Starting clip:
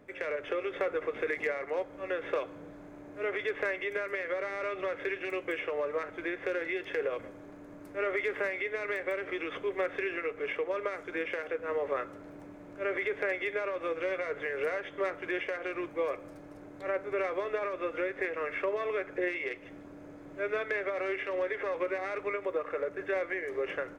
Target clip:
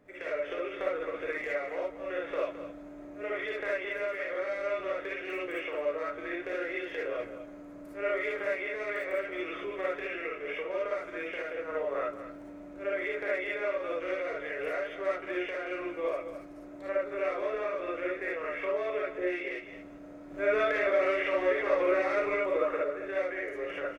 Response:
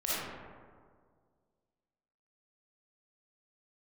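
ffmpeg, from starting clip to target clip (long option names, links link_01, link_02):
-filter_complex "[0:a]asettb=1/sr,asplit=3[link_01][link_02][link_03];[link_01]atrim=end=20.304[link_04];[link_02]atrim=start=20.3:end=22.77,asetpts=PTS-STARTPTS,afade=type=in:duration=0.004:curve=qsin,afade=type=out:start_time=2.466:duration=0.004:curve=qsin,acontrast=46[link_05];[link_03]atrim=start=22.766[link_06];[link_04][link_05]acrossfade=duration=0.004:curve1=hsin:curve2=qsin[link_07];[link_07][link_06]acrossfade=duration=0.004:curve1=qsin:curve2=hsin,aecho=1:1:216:0.266[link_08];[1:a]atrim=start_sample=2205,atrim=end_sample=3528[link_09];[link_08][link_09]afir=irnorm=-1:irlink=0,volume=-4dB"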